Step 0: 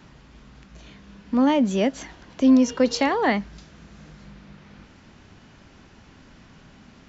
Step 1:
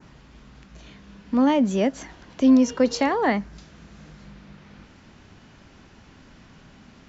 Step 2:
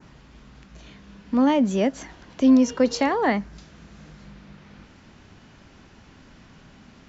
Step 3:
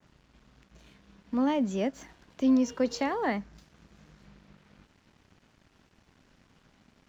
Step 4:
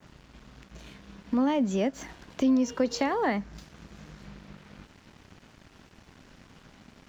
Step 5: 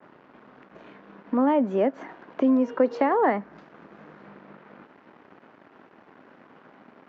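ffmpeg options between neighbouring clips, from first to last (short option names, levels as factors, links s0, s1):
-af "adynamicequalizer=threshold=0.00562:dfrequency=3400:dqfactor=1.1:tfrequency=3400:tqfactor=1.1:attack=5:release=100:ratio=0.375:range=3:mode=cutabove:tftype=bell"
-af anull
-af "aeval=exprs='sgn(val(0))*max(abs(val(0))-0.00237,0)':c=same,volume=0.422"
-af "acompressor=threshold=0.0141:ratio=2,volume=2.82"
-af "asuperpass=centerf=680:order=4:qfactor=0.51,volume=2.11"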